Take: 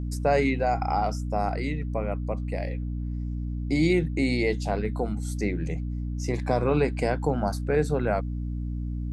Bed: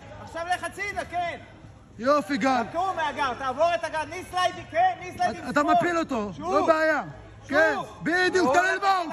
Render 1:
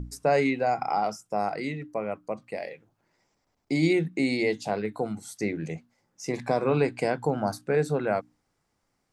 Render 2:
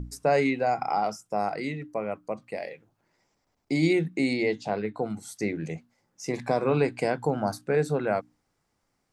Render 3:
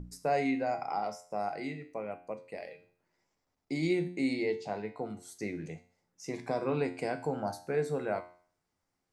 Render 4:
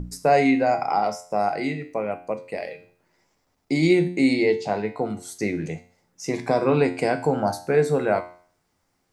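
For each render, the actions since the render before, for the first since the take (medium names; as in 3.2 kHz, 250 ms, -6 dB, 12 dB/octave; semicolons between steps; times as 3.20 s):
hum notches 60/120/180/240/300 Hz
4.33–5.10 s: distance through air 83 m
feedback comb 89 Hz, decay 0.49 s, harmonics all, mix 70%
trim +11.5 dB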